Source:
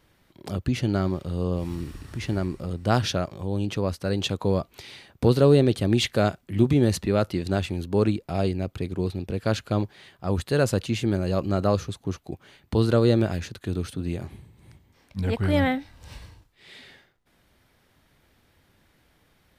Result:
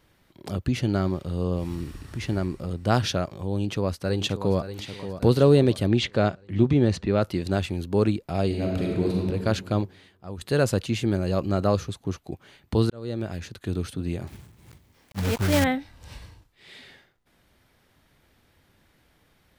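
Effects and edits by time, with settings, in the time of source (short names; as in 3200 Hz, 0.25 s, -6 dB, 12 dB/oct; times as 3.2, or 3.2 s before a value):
3.5–4.61 echo throw 0.58 s, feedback 50%, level -11 dB
5.87–7.22 air absorption 100 m
8.46–9.18 reverb throw, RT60 1.8 s, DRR -2.5 dB
9.78–10.41 fade out quadratic, to -12 dB
12.9–13.69 fade in
14.27–15.66 block floating point 3-bit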